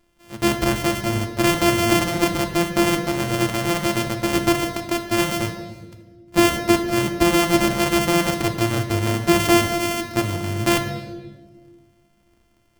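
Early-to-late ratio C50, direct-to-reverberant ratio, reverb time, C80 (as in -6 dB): 8.5 dB, 5.0 dB, 1.4 s, 10.5 dB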